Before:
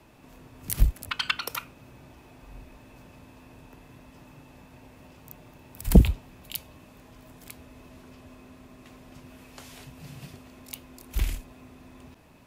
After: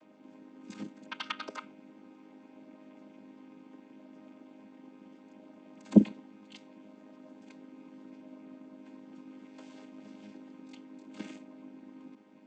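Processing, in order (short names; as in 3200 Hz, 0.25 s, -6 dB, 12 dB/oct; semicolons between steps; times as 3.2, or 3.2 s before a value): chord vocoder major triad, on G#3; AM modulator 95 Hz, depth 15%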